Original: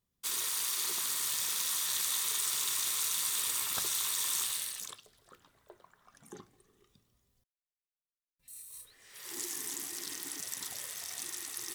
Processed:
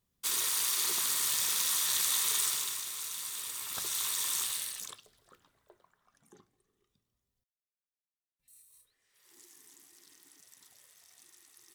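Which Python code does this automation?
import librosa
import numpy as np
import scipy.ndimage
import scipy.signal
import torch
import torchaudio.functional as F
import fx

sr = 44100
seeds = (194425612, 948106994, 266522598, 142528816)

y = fx.gain(x, sr, db=fx.line((2.43, 3.0), (2.86, -6.5), (3.57, -6.5), (4.02, 0.0), (4.9, 0.0), (6.37, -10.5), (8.54, -10.5), (9.15, -19.0)))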